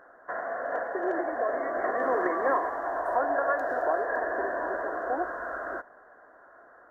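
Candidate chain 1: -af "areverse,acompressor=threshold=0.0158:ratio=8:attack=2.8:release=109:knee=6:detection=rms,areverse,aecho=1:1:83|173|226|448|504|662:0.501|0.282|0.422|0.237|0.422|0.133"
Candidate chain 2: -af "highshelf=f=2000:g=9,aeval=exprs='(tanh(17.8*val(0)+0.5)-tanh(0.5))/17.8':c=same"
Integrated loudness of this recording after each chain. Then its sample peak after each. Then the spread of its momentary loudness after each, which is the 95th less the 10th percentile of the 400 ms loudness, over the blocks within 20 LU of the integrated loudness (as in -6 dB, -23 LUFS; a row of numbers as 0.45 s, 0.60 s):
-38.5 LUFS, -31.5 LUFS; -25.5 dBFS, -21.5 dBFS; 7 LU, 6 LU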